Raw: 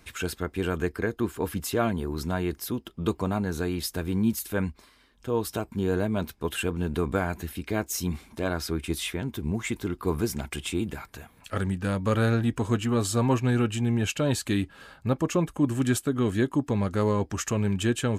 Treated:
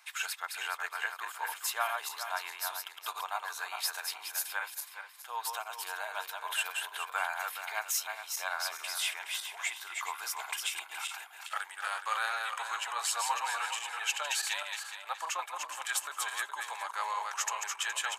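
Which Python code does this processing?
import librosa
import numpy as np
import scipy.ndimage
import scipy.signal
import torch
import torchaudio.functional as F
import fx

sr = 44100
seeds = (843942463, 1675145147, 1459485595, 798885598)

y = fx.reverse_delay_fb(x, sr, ms=209, feedback_pct=51, wet_db=-4)
y = scipy.signal.sosfilt(scipy.signal.ellip(4, 1.0, 80, 800.0, 'highpass', fs=sr, output='sos'), y)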